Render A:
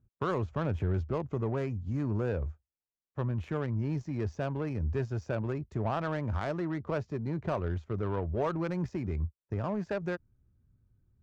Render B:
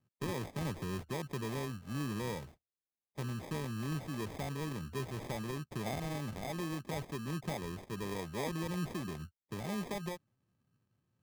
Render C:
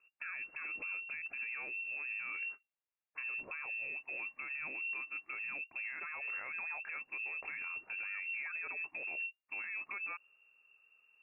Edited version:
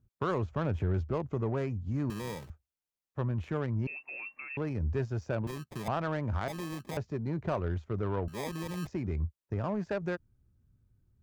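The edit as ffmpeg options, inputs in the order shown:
-filter_complex "[1:a]asplit=4[s0][s1][s2][s3];[0:a]asplit=6[s4][s5][s6][s7][s8][s9];[s4]atrim=end=2.102[s10];[s0]atrim=start=2.098:end=2.502[s11];[s5]atrim=start=2.498:end=3.872[s12];[2:a]atrim=start=3.868:end=4.572[s13];[s6]atrim=start=4.568:end=5.472[s14];[s1]atrim=start=5.468:end=5.882[s15];[s7]atrim=start=5.878:end=6.482[s16];[s2]atrim=start=6.478:end=6.972[s17];[s8]atrim=start=6.968:end=8.282[s18];[s3]atrim=start=8.278:end=8.872[s19];[s9]atrim=start=8.868[s20];[s10][s11]acrossfade=d=0.004:c1=hsin:c2=hsin[s21];[s21][s12]acrossfade=d=0.004:c1=hsin:c2=hsin[s22];[s22][s13]acrossfade=d=0.004:c1=hsin:c2=hsin[s23];[s23][s14]acrossfade=d=0.004:c1=hsin:c2=hsin[s24];[s24][s15]acrossfade=d=0.004:c1=hsin:c2=hsin[s25];[s25][s16]acrossfade=d=0.004:c1=hsin:c2=hsin[s26];[s26][s17]acrossfade=d=0.004:c1=hsin:c2=hsin[s27];[s27][s18]acrossfade=d=0.004:c1=hsin:c2=hsin[s28];[s28][s19]acrossfade=d=0.004:c1=hsin:c2=hsin[s29];[s29][s20]acrossfade=d=0.004:c1=hsin:c2=hsin"

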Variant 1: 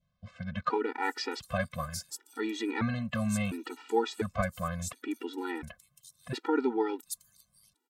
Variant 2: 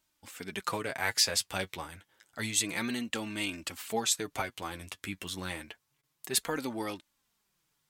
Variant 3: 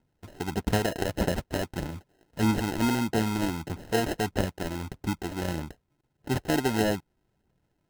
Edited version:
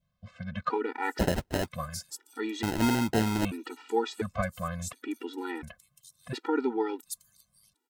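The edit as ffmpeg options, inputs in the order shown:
-filter_complex "[2:a]asplit=2[s0][s1];[0:a]asplit=3[s2][s3][s4];[s2]atrim=end=1.192[s5];[s0]atrim=start=1.188:end=1.682[s6];[s3]atrim=start=1.678:end=2.632[s7];[s1]atrim=start=2.628:end=3.452[s8];[s4]atrim=start=3.448[s9];[s5][s6]acrossfade=d=0.004:c1=hsin:c2=hsin[s10];[s10][s7]acrossfade=d=0.004:c1=hsin:c2=hsin[s11];[s11][s8]acrossfade=d=0.004:c1=hsin:c2=hsin[s12];[s12][s9]acrossfade=d=0.004:c1=hsin:c2=hsin"

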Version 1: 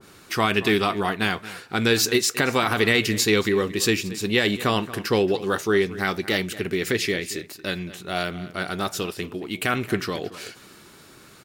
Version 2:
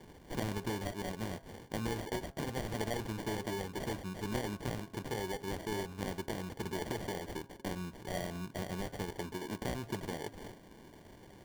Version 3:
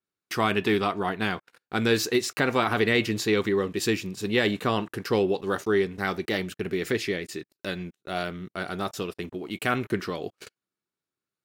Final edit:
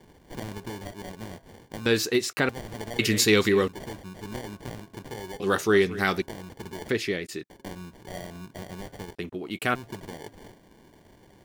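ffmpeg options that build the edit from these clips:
-filter_complex "[2:a]asplit=3[s0][s1][s2];[0:a]asplit=2[s3][s4];[1:a]asplit=6[s5][s6][s7][s8][s9][s10];[s5]atrim=end=1.862[s11];[s0]atrim=start=1.858:end=2.492[s12];[s6]atrim=start=2.488:end=2.992[s13];[s3]atrim=start=2.988:end=3.682[s14];[s7]atrim=start=3.678:end=5.402[s15];[s4]atrim=start=5.398:end=6.222[s16];[s8]atrim=start=6.218:end=6.892[s17];[s1]atrim=start=6.888:end=7.502[s18];[s9]atrim=start=7.498:end=9.152[s19];[s2]atrim=start=9.148:end=9.752[s20];[s10]atrim=start=9.748[s21];[s11][s12]acrossfade=d=0.004:c1=hsin:c2=hsin[s22];[s22][s13]acrossfade=d=0.004:c1=hsin:c2=hsin[s23];[s23][s14]acrossfade=d=0.004:c1=hsin:c2=hsin[s24];[s24][s15]acrossfade=d=0.004:c1=hsin:c2=hsin[s25];[s25][s16]acrossfade=d=0.004:c1=hsin:c2=hsin[s26];[s26][s17]acrossfade=d=0.004:c1=hsin:c2=hsin[s27];[s27][s18]acrossfade=d=0.004:c1=hsin:c2=hsin[s28];[s28][s19]acrossfade=d=0.004:c1=hsin:c2=hsin[s29];[s29][s20]acrossfade=d=0.004:c1=hsin:c2=hsin[s30];[s30][s21]acrossfade=d=0.004:c1=hsin:c2=hsin"

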